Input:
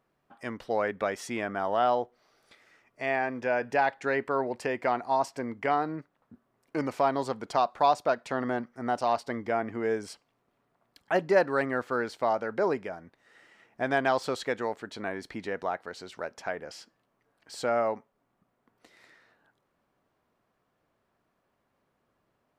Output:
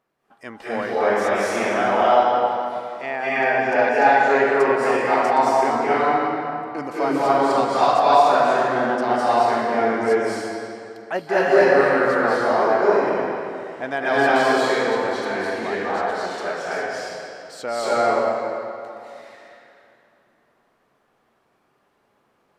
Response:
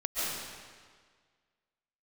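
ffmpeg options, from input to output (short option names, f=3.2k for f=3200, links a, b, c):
-filter_complex "[0:a]lowshelf=f=160:g=-9.5[a];[1:a]atrim=start_sample=2205,asetrate=28224,aresample=44100[b];[a][b]afir=irnorm=-1:irlink=0"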